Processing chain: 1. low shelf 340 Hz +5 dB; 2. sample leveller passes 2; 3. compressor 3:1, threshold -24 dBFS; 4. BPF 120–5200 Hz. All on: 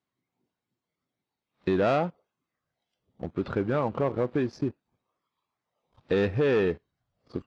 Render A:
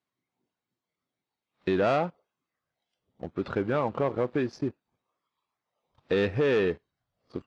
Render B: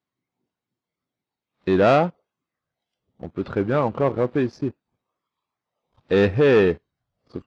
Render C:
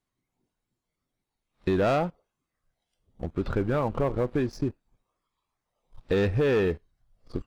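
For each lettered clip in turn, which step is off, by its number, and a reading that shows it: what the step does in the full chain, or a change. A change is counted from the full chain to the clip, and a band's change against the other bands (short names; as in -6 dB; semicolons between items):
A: 1, 125 Hz band -3.0 dB; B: 3, mean gain reduction 4.5 dB; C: 4, 125 Hz band +3.0 dB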